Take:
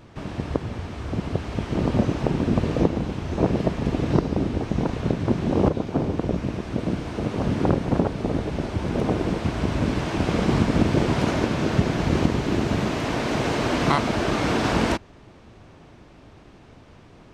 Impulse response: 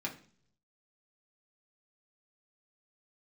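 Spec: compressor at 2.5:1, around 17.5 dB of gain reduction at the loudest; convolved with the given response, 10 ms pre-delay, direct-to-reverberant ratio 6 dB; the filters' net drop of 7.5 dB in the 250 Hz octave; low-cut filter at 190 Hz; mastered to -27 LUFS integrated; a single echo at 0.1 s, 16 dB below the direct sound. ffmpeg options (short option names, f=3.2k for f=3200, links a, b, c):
-filter_complex "[0:a]highpass=190,equalizer=f=250:t=o:g=-8,acompressor=threshold=-47dB:ratio=2.5,aecho=1:1:100:0.158,asplit=2[a][b];[1:a]atrim=start_sample=2205,adelay=10[c];[b][c]afir=irnorm=-1:irlink=0,volume=-8dB[d];[a][d]amix=inputs=2:normalize=0,volume=15.5dB"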